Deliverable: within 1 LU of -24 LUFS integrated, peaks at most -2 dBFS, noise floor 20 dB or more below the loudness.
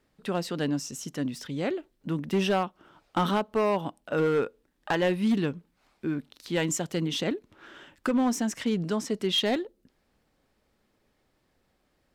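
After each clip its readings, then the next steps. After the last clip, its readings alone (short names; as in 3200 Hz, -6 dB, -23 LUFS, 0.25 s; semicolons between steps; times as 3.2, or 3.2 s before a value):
clipped 1.0%; flat tops at -19.0 dBFS; loudness -29.0 LUFS; peak -19.0 dBFS; loudness target -24.0 LUFS
-> clip repair -19 dBFS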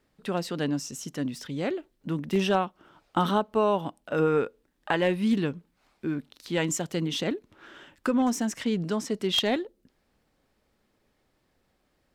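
clipped 0.0%; loudness -28.5 LUFS; peak -10.0 dBFS; loudness target -24.0 LUFS
-> gain +4.5 dB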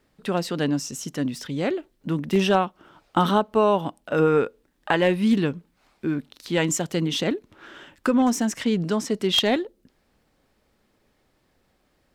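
loudness -24.0 LUFS; peak -5.5 dBFS; noise floor -68 dBFS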